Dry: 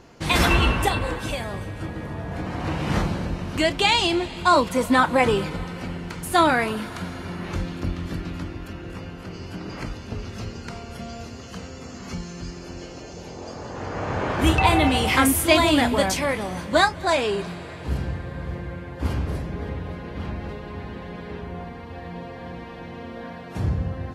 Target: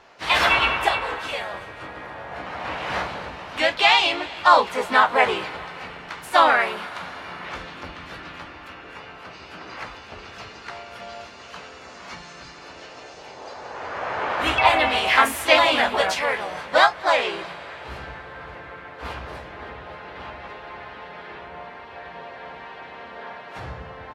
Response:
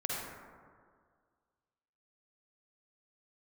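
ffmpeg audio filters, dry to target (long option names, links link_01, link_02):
-filter_complex "[0:a]acrossover=split=570 4400:gain=0.1 1 0.224[link_01][link_02][link_03];[link_01][link_02][link_03]amix=inputs=3:normalize=0,asplit=3[link_04][link_05][link_06];[link_05]asetrate=37084,aresample=44100,atempo=1.18921,volume=-4dB[link_07];[link_06]asetrate=55563,aresample=44100,atempo=0.793701,volume=-12dB[link_08];[link_04][link_07][link_08]amix=inputs=3:normalize=0,asplit=2[link_09][link_10];[link_10]adelay=16,volume=-11dB[link_11];[link_09][link_11]amix=inputs=2:normalize=0,volume=2.5dB"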